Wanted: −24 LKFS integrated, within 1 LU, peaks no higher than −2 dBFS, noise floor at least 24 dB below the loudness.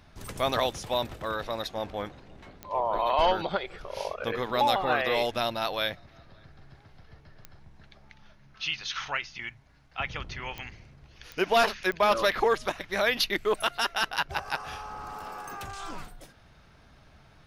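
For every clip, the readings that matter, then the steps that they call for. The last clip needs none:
number of clicks 5; integrated loudness −29.0 LKFS; sample peak −12.0 dBFS; target loudness −24.0 LKFS
→ click removal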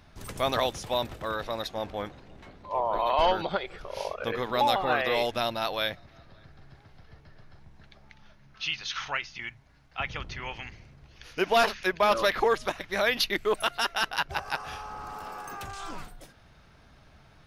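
number of clicks 0; integrated loudness −29.0 LKFS; sample peak −12.0 dBFS; target loudness −24.0 LKFS
→ level +5 dB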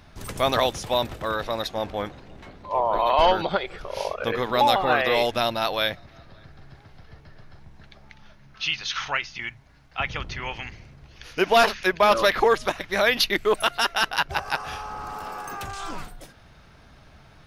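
integrated loudness −24.0 LKFS; sample peak −7.0 dBFS; background noise floor −52 dBFS

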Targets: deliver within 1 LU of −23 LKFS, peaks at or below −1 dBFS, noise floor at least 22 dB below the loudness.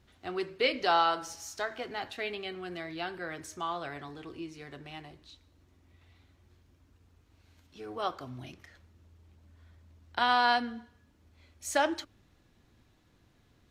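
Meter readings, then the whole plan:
integrated loudness −32.5 LKFS; sample peak −14.0 dBFS; target loudness −23.0 LKFS
→ level +9.5 dB

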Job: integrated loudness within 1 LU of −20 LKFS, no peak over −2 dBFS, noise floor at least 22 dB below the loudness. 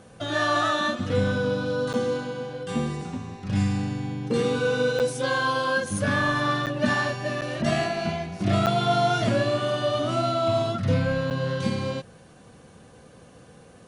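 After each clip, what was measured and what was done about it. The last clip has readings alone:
number of dropouts 6; longest dropout 8.3 ms; integrated loudness −25.0 LKFS; sample peak −10.0 dBFS; target loudness −20.0 LKFS
→ repair the gap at 0:01.93/0:04.99/0:06.66/0:07.41/0:08.66/0:11.30, 8.3 ms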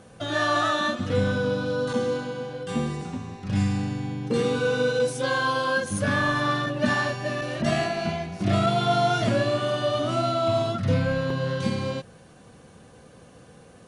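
number of dropouts 0; integrated loudness −25.0 LKFS; sample peak −10.0 dBFS; target loudness −20.0 LKFS
→ level +5 dB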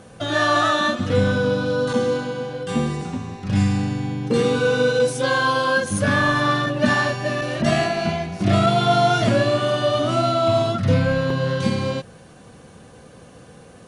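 integrated loudness −20.0 LKFS; sample peak −5.0 dBFS; background noise floor −45 dBFS

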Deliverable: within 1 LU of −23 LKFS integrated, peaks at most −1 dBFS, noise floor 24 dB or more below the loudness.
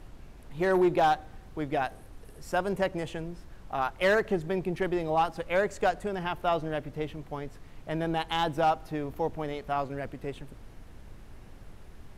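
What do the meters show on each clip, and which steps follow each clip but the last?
share of clipped samples 0.4%; peaks flattened at −18.0 dBFS; background noise floor −49 dBFS; target noise floor −54 dBFS; integrated loudness −30.0 LKFS; sample peak −18.0 dBFS; target loudness −23.0 LKFS
→ clipped peaks rebuilt −18 dBFS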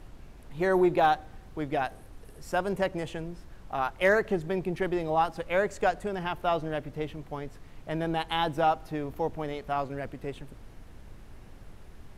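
share of clipped samples 0.0%; background noise floor −49 dBFS; target noise floor −54 dBFS
→ noise reduction from a noise print 6 dB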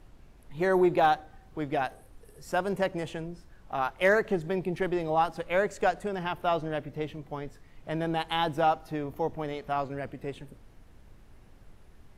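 background noise floor −55 dBFS; integrated loudness −29.5 LKFS; sample peak −11.0 dBFS; target loudness −23.0 LKFS
→ level +6.5 dB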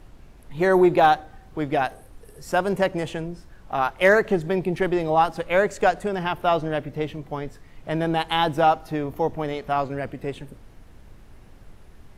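integrated loudness −23.0 LKFS; sample peak −4.5 dBFS; background noise floor −48 dBFS

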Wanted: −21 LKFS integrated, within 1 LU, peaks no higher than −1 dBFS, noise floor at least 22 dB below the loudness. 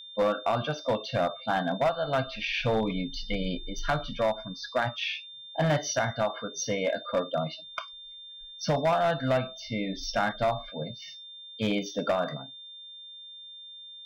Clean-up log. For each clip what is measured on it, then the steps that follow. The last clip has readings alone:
share of clipped samples 1.4%; peaks flattened at −19.5 dBFS; interfering tone 3,600 Hz; level of the tone −43 dBFS; integrated loudness −29.5 LKFS; sample peak −19.5 dBFS; target loudness −21.0 LKFS
→ clipped peaks rebuilt −19.5 dBFS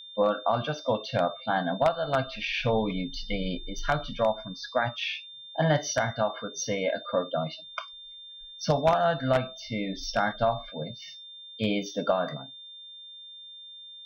share of clipped samples 0.0%; interfering tone 3,600 Hz; level of the tone −43 dBFS
→ notch filter 3,600 Hz, Q 30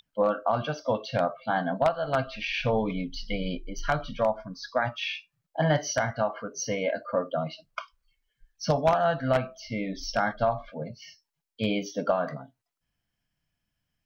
interfering tone none found; integrated loudness −29.0 LKFS; sample peak −10.5 dBFS; target loudness −21.0 LKFS
→ level +8 dB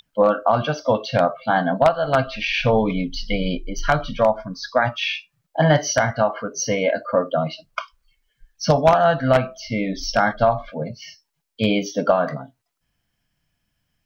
integrated loudness −21.0 LKFS; sample peak −2.5 dBFS; background noise floor −75 dBFS

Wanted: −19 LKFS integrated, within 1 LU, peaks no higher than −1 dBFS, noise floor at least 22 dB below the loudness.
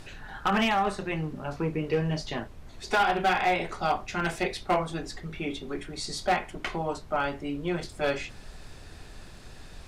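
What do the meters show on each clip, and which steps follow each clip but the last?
share of clipped samples 0.6%; peaks flattened at −18.0 dBFS; background noise floor −47 dBFS; target noise floor −51 dBFS; integrated loudness −29.0 LKFS; sample peak −18.0 dBFS; target loudness −19.0 LKFS
→ clipped peaks rebuilt −18 dBFS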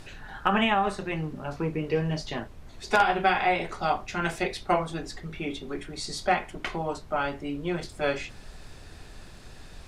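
share of clipped samples 0.0%; background noise floor −47 dBFS; target noise floor −51 dBFS
→ noise reduction from a noise print 6 dB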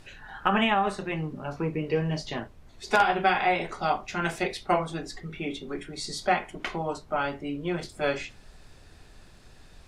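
background noise floor −52 dBFS; integrated loudness −28.5 LKFS; sample peak −9.0 dBFS; target loudness −19.0 LKFS
→ level +9.5 dB
brickwall limiter −1 dBFS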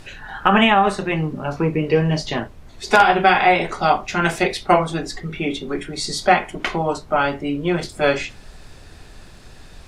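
integrated loudness −19.0 LKFS; sample peak −1.0 dBFS; background noise floor −43 dBFS

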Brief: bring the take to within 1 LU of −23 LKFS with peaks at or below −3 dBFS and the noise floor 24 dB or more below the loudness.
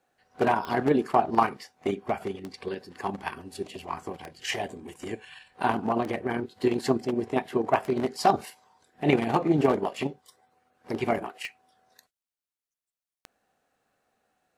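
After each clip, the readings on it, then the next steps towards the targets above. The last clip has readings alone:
number of clicks 8; integrated loudness −28.0 LKFS; sample peak −5.0 dBFS; target loudness −23.0 LKFS
→ click removal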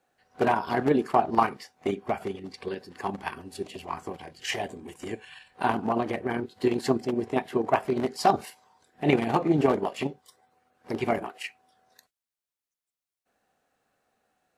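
number of clicks 0; integrated loudness −28.0 LKFS; sample peak −5.0 dBFS; target loudness −23.0 LKFS
→ level +5 dB
brickwall limiter −3 dBFS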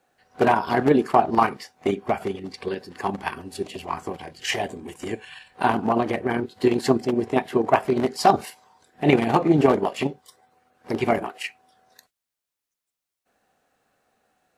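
integrated loudness −23.5 LKFS; sample peak −3.0 dBFS; background noise floor −86 dBFS

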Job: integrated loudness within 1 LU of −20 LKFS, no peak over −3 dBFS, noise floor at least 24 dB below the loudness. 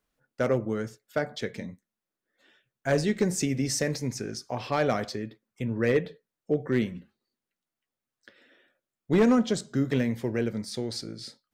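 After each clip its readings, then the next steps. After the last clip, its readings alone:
share of clipped samples 0.3%; peaks flattened at −15.5 dBFS; integrated loudness −28.5 LKFS; sample peak −15.5 dBFS; target loudness −20.0 LKFS
→ clipped peaks rebuilt −15.5 dBFS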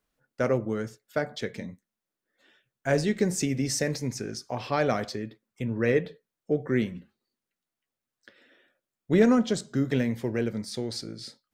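share of clipped samples 0.0%; integrated loudness −28.0 LKFS; sample peak −9.0 dBFS; target loudness −20.0 LKFS
→ level +8 dB
brickwall limiter −3 dBFS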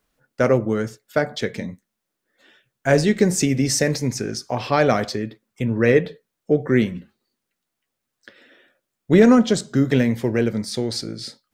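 integrated loudness −20.0 LKFS; sample peak −3.0 dBFS; background noise floor −81 dBFS

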